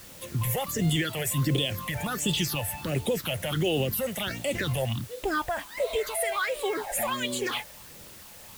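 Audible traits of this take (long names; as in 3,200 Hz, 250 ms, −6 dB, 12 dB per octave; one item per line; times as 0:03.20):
phaser sweep stages 6, 1.4 Hz, lowest notch 300–1,600 Hz
a quantiser's noise floor 8 bits, dither triangular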